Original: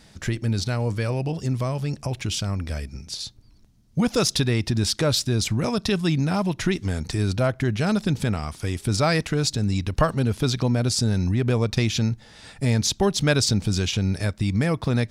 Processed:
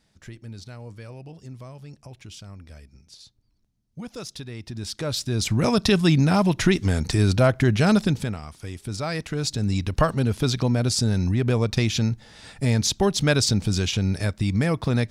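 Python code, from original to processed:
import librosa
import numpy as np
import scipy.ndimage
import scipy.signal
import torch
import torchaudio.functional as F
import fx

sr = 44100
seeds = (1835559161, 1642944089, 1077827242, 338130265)

y = fx.gain(x, sr, db=fx.line((4.5, -15.0), (5.3, -3.0), (5.68, 4.0), (7.99, 4.0), (8.41, -8.0), (9.05, -8.0), (9.71, 0.0)))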